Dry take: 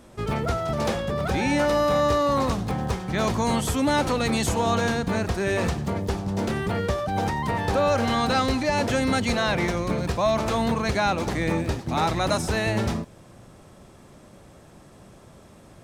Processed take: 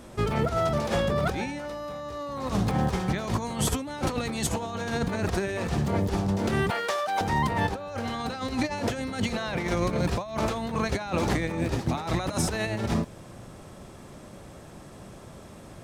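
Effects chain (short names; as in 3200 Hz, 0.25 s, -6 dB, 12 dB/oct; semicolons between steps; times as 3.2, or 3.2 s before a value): 6.7–7.21 HPF 760 Hz 12 dB/oct; negative-ratio compressor -27 dBFS, ratio -0.5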